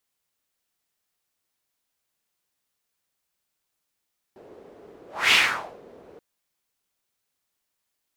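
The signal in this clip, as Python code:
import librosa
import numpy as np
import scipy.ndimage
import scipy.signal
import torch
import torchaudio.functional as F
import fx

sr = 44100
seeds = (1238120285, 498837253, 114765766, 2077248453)

y = fx.whoosh(sr, seeds[0], length_s=1.83, peak_s=0.96, rise_s=0.26, fall_s=0.52, ends_hz=440.0, peak_hz=2600.0, q=2.8, swell_db=31)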